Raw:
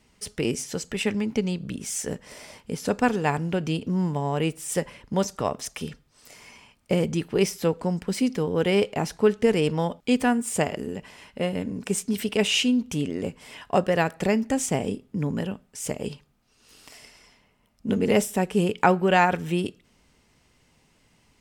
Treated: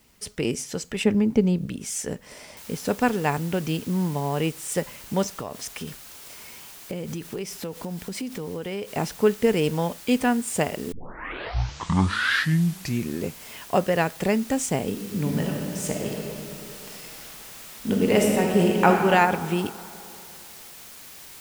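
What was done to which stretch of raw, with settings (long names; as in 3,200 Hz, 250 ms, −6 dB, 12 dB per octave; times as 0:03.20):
0:01.04–0:01.66: tilt shelving filter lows +6.5 dB, about 1,100 Hz
0:02.57: noise floor change −63 dB −44 dB
0:05.39–0:08.89: downward compressor, threshold −28 dBFS
0:10.92: tape start 2.49 s
0:14.89–0:18.87: thrown reverb, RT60 2.8 s, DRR 0 dB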